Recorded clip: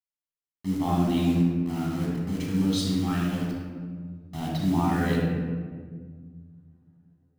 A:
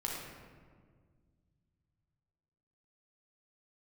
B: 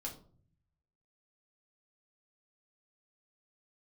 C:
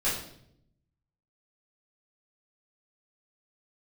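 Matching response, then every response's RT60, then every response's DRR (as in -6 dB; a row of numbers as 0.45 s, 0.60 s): A; 1.8 s, 0.50 s, 0.70 s; -3.5 dB, -1.5 dB, -11.0 dB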